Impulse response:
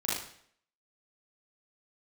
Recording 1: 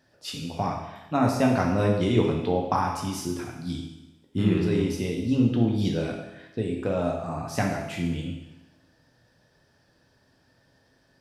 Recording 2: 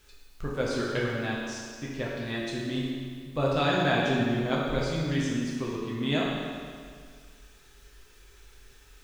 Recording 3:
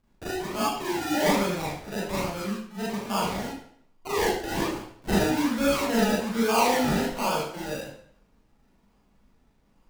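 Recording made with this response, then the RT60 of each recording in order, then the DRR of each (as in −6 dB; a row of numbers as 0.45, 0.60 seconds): 3; 1.0, 2.0, 0.60 seconds; −0.5, −5.0, −8.0 decibels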